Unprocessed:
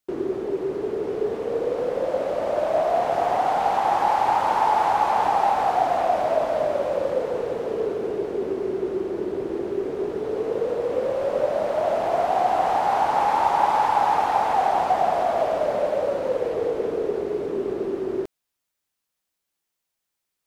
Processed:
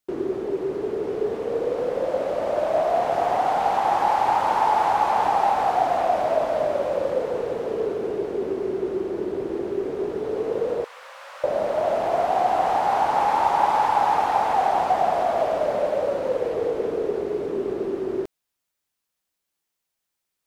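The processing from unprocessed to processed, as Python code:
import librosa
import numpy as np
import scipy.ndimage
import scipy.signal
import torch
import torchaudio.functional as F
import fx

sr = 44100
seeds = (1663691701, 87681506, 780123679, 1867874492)

y = fx.highpass(x, sr, hz=1100.0, slope=24, at=(10.84, 11.44))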